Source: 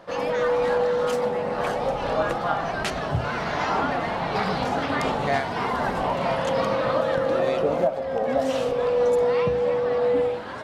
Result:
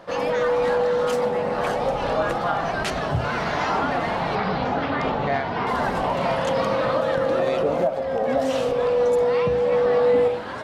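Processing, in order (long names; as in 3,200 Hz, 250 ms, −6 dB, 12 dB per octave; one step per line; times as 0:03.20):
in parallel at +2 dB: brickwall limiter −17.5 dBFS, peak gain reduction 7.5 dB
0:04.35–0:05.67: on the sum: high-frequency loss of the air 170 metres
0:09.70–0:10.28: double-tracking delay 20 ms −2 dB
level −4.5 dB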